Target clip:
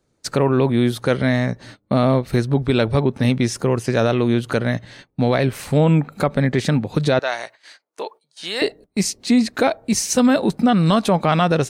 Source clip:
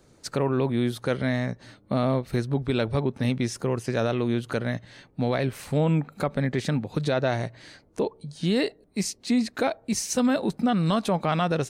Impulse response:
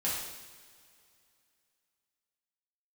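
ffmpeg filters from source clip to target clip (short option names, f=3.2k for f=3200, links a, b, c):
-filter_complex "[0:a]asettb=1/sr,asplit=3[a][b][c];[a]atrim=end=7.194[d];[b]atrim=start=7.19:end=8.62,asetpts=PTS-STARTPTS,afade=t=in:d=0.004:c=qsin,afade=t=out:st=1.426:d=0.004:c=qsin,highpass=840[e];[c]atrim=start=8.616[f];[d][e]acrossfade=d=0.004:c1=hsin:c2=qsin[g];[g][f]acrossfade=d=0.004:c1=qsin:c2=hsin,agate=range=-18dB:threshold=-47dB:ratio=16:detection=peak,volume=7.5dB"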